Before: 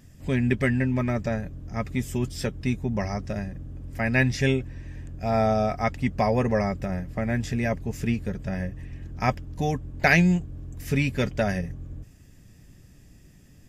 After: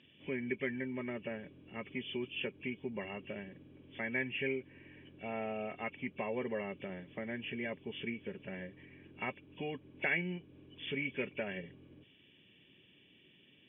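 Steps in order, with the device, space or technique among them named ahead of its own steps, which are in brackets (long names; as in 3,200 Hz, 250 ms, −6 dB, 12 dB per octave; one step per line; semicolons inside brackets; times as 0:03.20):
hearing aid with frequency lowering (hearing-aid frequency compression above 2,200 Hz 4 to 1; downward compressor 2 to 1, threshold −28 dBFS, peak gain reduction 8 dB; loudspeaker in its box 260–6,400 Hz, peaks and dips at 380 Hz +5 dB, 710 Hz −8 dB, 1,300 Hz −6 dB, 2,400 Hz +5 dB, 4,800 Hz +9 dB)
level −7 dB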